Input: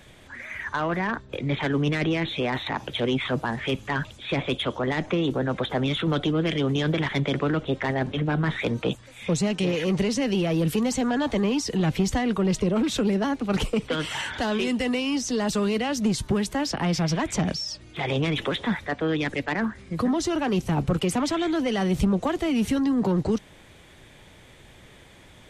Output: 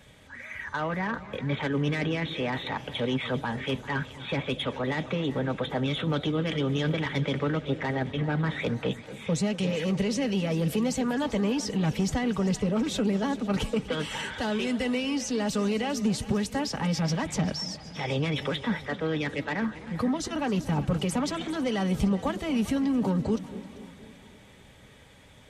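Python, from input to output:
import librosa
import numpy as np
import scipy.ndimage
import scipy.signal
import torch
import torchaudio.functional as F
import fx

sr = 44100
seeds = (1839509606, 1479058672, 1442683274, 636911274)

y = fx.notch_comb(x, sr, f0_hz=350.0)
y = fx.echo_split(y, sr, split_hz=700.0, low_ms=235, high_ms=392, feedback_pct=52, wet_db=-16.0)
y = fx.echo_warbled(y, sr, ms=255, feedback_pct=59, rate_hz=2.8, cents=178, wet_db=-19)
y = F.gain(torch.from_numpy(y), -2.5).numpy()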